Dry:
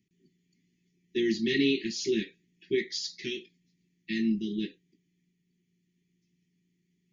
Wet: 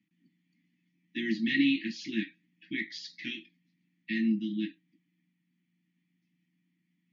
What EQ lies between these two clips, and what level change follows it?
band-pass filter 250–2,500 Hz
Chebyshev band-stop filter 320–710 Hz, order 4
+4.5 dB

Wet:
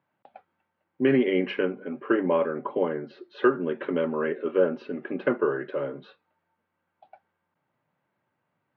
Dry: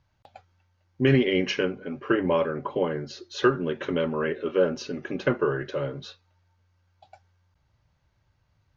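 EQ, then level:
high-pass filter 190 Hz 24 dB per octave
low-pass filter 2,900 Hz 12 dB per octave
high-frequency loss of the air 290 metres
+1.0 dB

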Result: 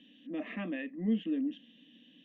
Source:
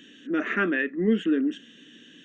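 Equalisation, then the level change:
low-pass filter 3,700 Hz 24 dB per octave
phaser with its sweep stopped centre 390 Hz, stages 6
−6.0 dB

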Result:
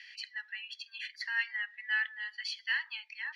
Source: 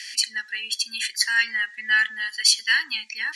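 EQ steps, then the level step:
Chebyshev high-pass with heavy ripple 660 Hz, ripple 3 dB
high-frequency loss of the air 320 metres
−7.0 dB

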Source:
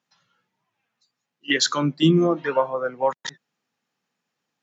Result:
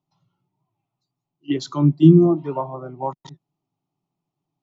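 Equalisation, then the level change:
spectral tilt −4.5 dB per octave
phaser with its sweep stopped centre 330 Hz, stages 8
−2.0 dB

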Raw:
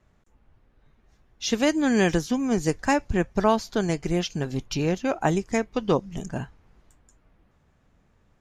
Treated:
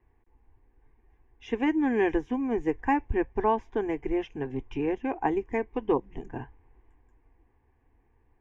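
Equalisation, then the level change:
low-pass filter 1,800 Hz 12 dB per octave
phaser with its sweep stopped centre 890 Hz, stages 8
0.0 dB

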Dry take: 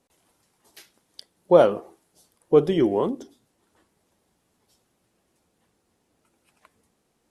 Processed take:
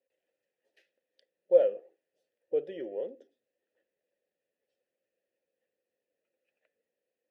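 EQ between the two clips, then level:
formant filter e
−4.5 dB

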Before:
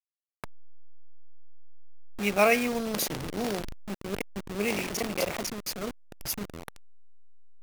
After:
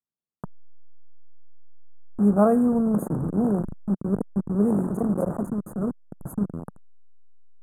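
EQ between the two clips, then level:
inverse Chebyshev band-stop filter 2,100–5,800 Hz, stop band 40 dB
high-frequency loss of the air 59 metres
parametric band 180 Hz +14 dB 1.7 octaves
0.0 dB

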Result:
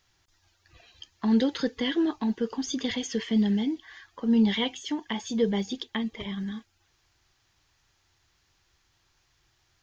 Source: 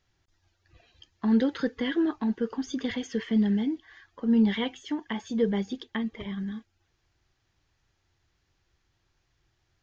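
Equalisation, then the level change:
parametric band 1,000 Hz +4.5 dB 1.1 octaves
high-shelf EQ 2,200 Hz +10.5 dB
dynamic equaliser 1,400 Hz, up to −8 dB, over −47 dBFS, Q 1.2
0.0 dB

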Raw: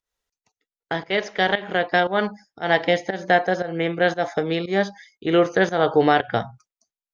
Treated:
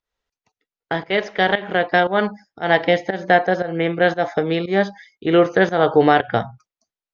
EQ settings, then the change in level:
high-frequency loss of the air 120 metres
+3.5 dB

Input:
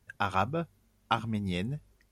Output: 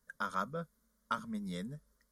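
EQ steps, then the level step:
dynamic equaliser 790 Hz, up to −4 dB, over −41 dBFS, Q 0.85
low-shelf EQ 460 Hz −5.5 dB
phaser with its sweep stopped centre 520 Hz, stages 8
−1.0 dB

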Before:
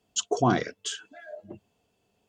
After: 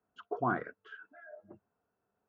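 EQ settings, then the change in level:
transistor ladder low-pass 1,600 Hz, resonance 60%
low-shelf EQ 110 Hz −5.5 dB
0.0 dB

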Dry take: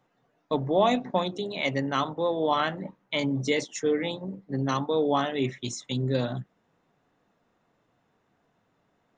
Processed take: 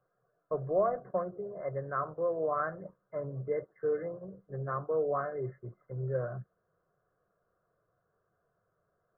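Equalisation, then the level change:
linear-phase brick-wall low-pass 2,100 Hz
phaser with its sweep stopped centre 1,300 Hz, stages 8
−3.5 dB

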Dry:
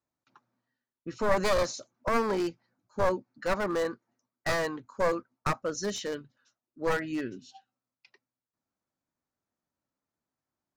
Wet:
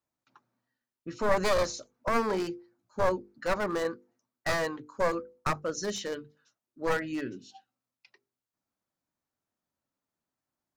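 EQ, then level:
mains-hum notches 50/100/150/200/250/300/350/400/450/500 Hz
0.0 dB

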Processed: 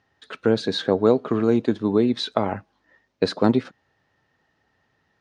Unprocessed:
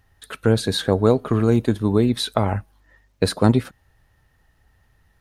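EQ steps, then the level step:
high-pass filter 260 Hz 12 dB per octave
low-pass filter 6,000 Hz 24 dB per octave
low-shelf EQ 380 Hz +7 dB
−2.5 dB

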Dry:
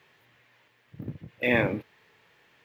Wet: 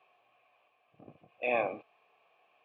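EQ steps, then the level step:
formant filter a
high-shelf EQ 6,600 Hz −6.5 dB
notch filter 1,400 Hz, Q 8.3
+7.0 dB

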